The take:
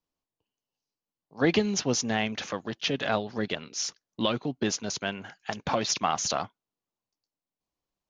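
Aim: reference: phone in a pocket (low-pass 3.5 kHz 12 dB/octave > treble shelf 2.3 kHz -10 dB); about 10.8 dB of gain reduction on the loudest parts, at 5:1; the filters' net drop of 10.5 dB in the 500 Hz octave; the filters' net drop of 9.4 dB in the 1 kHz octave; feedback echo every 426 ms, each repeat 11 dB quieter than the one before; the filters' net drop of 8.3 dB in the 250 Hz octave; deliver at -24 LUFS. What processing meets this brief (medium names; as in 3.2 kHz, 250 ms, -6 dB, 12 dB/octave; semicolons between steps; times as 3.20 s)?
peaking EQ 250 Hz -8 dB; peaking EQ 500 Hz -8.5 dB; peaking EQ 1 kHz -7 dB; compression 5:1, threshold -38 dBFS; low-pass 3.5 kHz 12 dB/octave; treble shelf 2.3 kHz -10 dB; feedback delay 426 ms, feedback 28%, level -11 dB; trim +22.5 dB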